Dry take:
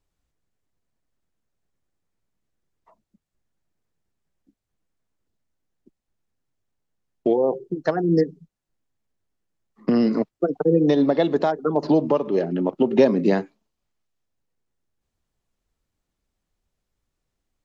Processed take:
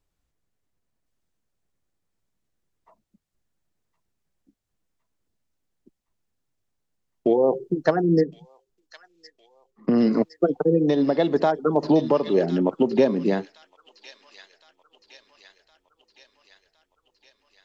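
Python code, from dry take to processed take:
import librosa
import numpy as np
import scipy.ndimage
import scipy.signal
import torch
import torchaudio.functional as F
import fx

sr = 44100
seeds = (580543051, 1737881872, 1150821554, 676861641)

p1 = fx.high_shelf(x, sr, hz=2700.0, db=-8.5, at=(8.24, 10.02))
p2 = p1 + fx.echo_wet_highpass(p1, sr, ms=1063, feedback_pct=61, hz=3000.0, wet_db=-4.0, dry=0)
y = fx.rider(p2, sr, range_db=10, speed_s=0.5)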